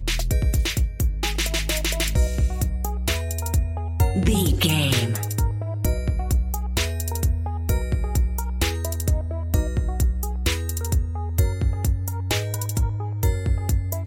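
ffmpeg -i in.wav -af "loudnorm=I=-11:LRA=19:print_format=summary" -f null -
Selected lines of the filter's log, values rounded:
Input Integrated:    -24.1 LUFS
Input True Peak:      -6.6 dBTP
Input LRA:             2.4 LU
Input Threshold:     -34.1 LUFS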